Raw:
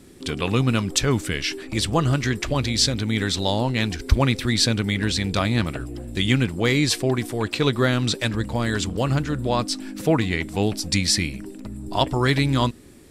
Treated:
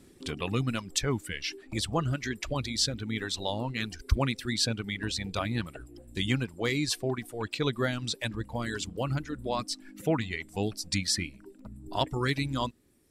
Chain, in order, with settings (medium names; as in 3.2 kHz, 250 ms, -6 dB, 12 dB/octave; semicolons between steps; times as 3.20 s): reverb removal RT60 1.7 s; trim -7.5 dB